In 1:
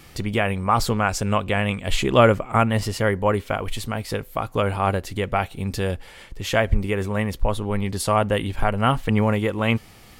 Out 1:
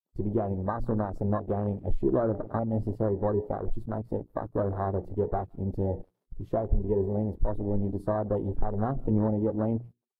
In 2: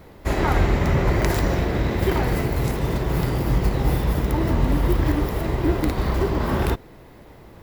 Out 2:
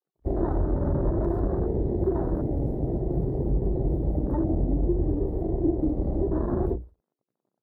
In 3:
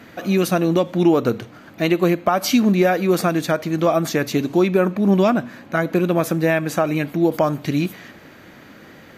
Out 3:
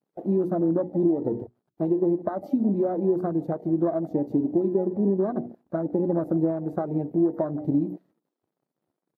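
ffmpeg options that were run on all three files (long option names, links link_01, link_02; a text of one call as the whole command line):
ffmpeg -i in.wav -filter_complex "[0:a]asplit=2[link_01][link_02];[link_02]aecho=0:1:155|310:0.1|0.022[link_03];[link_01][link_03]amix=inputs=2:normalize=0,flanger=delay=2.4:depth=1.1:regen=58:speed=0.58:shape=triangular,aeval=exprs='sgn(val(0))*max(abs(val(0))-0.00668,0)':channel_layout=same,acrusher=bits=8:mix=0:aa=0.000001,lowshelf=frequency=300:gain=-3.5,bandreject=frequency=60:width_type=h:width=6,bandreject=frequency=120:width_type=h:width=6,bandreject=frequency=180:width_type=h:width=6,bandreject=frequency=240:width_type=h:width=6,bandreject=frequency=300:width_type=h:width=6,bandreject=frequency=360:width_type=h:width=6,bandreject=frequency=420:width_type=h:width=6,bandreject=frequency=480:width_type=h:width=6,acompressor=threshold=-25dB:ratio=8,firequalizer=gain_entry='entry(360,0);entry(1600,-19);entry(2300,-24);entry(4100,-29)':delay=0.05:min_phase=1,aexciter=amount=1.9:drive=4.8:freq=3700,acontrast=69,afwtdn=0.0282" -ar 48000 -c:a libvorbis -b:a 48k out.ogg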